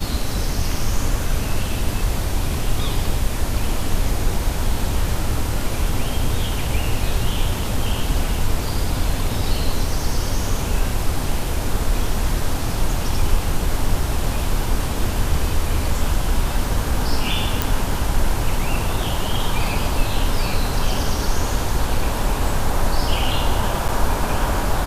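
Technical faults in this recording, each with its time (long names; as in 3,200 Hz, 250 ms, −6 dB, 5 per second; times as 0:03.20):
0:17.62: click
0:23.88–0:23.89: drop-out 7.9 ms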